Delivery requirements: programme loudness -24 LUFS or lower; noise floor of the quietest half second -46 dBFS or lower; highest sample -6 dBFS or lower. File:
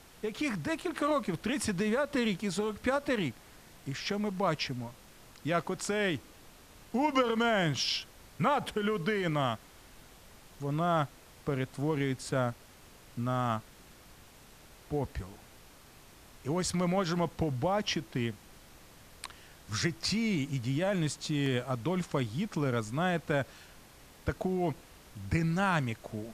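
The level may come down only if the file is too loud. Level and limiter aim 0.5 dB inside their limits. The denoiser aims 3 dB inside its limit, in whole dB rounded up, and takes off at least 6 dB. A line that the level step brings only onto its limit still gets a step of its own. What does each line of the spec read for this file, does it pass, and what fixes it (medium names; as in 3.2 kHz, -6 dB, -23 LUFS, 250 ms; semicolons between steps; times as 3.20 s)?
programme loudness -32.0 LUFS: pass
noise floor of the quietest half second -55 dBFS: pass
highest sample -14.0 dBFS: pass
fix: none needed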